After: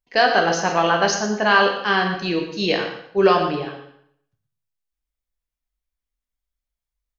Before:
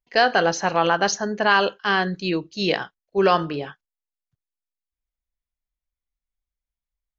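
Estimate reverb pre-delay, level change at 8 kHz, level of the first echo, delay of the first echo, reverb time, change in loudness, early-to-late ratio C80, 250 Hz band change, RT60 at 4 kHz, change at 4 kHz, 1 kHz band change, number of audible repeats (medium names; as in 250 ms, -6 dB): 7 ms, no reading, -10.5 dB, 117 ms, 0.70 s, +2.0 dB, 7.5 dB, +2.0 dB, 0.60 s, +2.0 dB, +2.0 dB, 1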